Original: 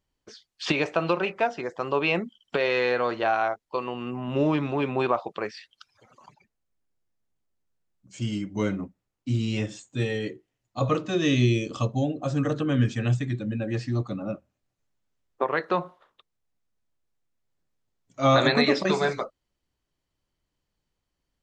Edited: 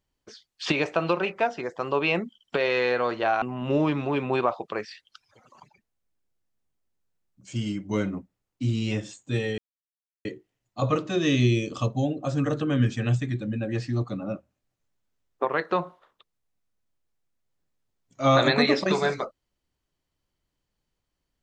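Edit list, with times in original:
0:03.42–0:04.08: remove
0:10.24: splice in silence 0.67 s

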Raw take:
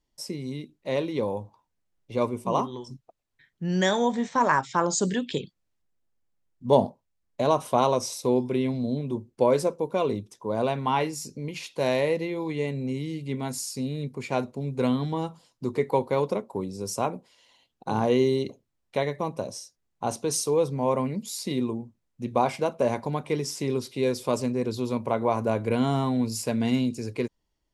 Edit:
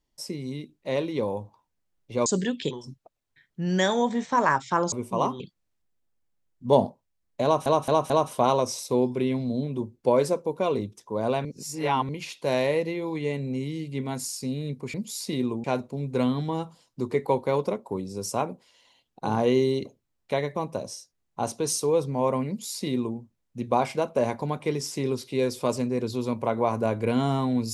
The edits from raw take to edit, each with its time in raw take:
0:02.26–0:02.74: swap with 0:04.95–0:05.40
0:07.44: stutter 0.22 s, 4 plays
0:10.79–0:11.43: reverse
0:21.12–0:21.82: duplicate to 0:14.28

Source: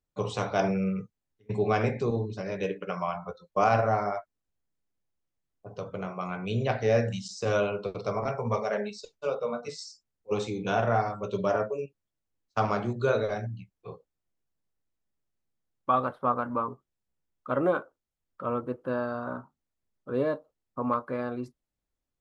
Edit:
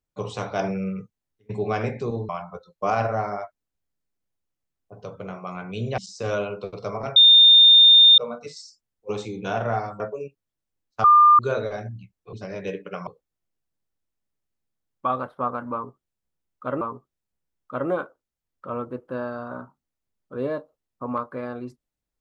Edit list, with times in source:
0:02.29–0:03.03: move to 0:13.91
0:06.72–0:07.20: remove
0:08.38–0:09.40: beep over 3,630 Hz −8.5 dBFS
0:11.22–0:11.58: remove
0:12.62–0:12.97: beep over 1,200 Hz −9.5 dBFS
0:16.57–0:17.65: repeat, 2 plays

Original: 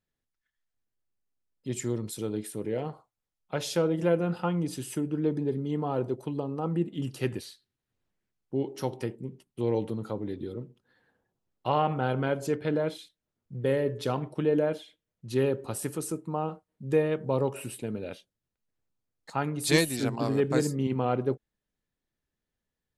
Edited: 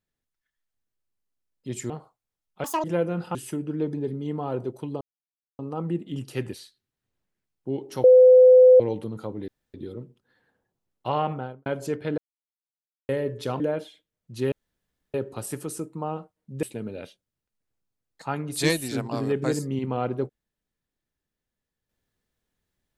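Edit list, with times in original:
0:01.90–0:02.83: remove
0:03.57–0:03.96: play speed 196%
0:04.47–0:04.79: remove
0:06.45: splice in silence 0.58 s
0:08.90–0:09.66: beep over 508 Hz −9 dBFS
0:10.34: splice in room tone 0.26 s
0:11.85–0:12.26: fade out and dull
0:12.78–0:13.69: silence
0:14.20–0:14.54: remove
0:15.46: splice in room tone 0.62 s
0:16.95–0:17.71: remove

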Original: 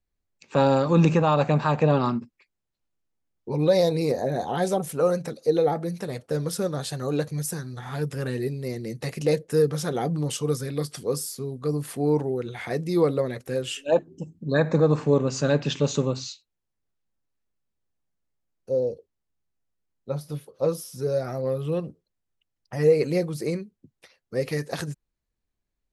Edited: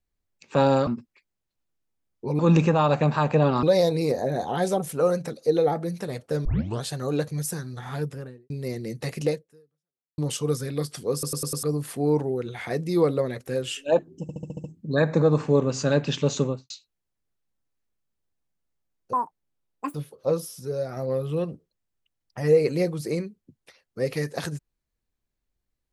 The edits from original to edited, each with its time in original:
0:00.87–0:02.11: move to 0:03.63
0:06.45: tape start 0.37 s
0:07.89–0:08.50: fade out and dull
0:09.27–0:10.18: fade out exponential
0:11.13: stutter in place 0.10 s, 5 plays
0:14.22: stutter 0.07 s, 7 plays
0:16.00–0:16.28: fade out and dull
0:18.71–0:20.30: play speed 195%
0:20.95–0:21.32: clip gain −3.5 dB

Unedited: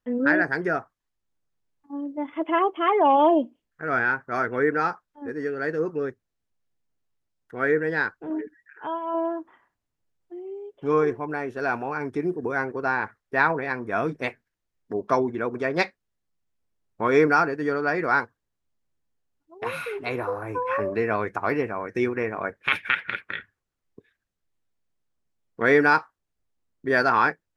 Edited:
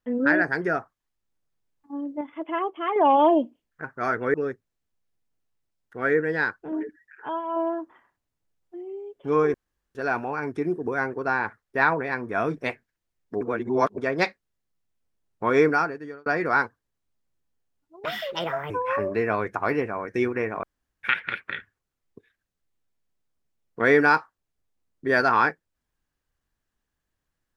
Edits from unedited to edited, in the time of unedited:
0:02.21–0:02.96: clip gain −5.5 dB
0:03.84–0:04.15: remove
0:04.65–0:05.92: remove
0:11.12–0:11.53: fill with room tone
0:14.99–0:15.56: reverse
0:17.16–0:17.84: fade out
0:19.63–0:20.51: play speed 135%
0:22.44–0:22.84: fill with room tone

